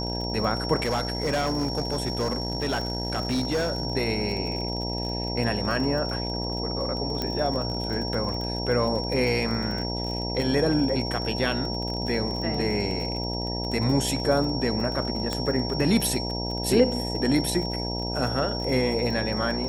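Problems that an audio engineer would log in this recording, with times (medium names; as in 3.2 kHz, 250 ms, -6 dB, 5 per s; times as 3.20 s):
buzz 60 Hz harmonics 16 -31 dBFS
crackle 32 per s -31 dBFS
whine 5.5 kHz -32 dBFS
0.82–3.87 s: clipped -21 dBFS
7.22 s: pop -14 dBFS
15.33 s: pop -14 dBFS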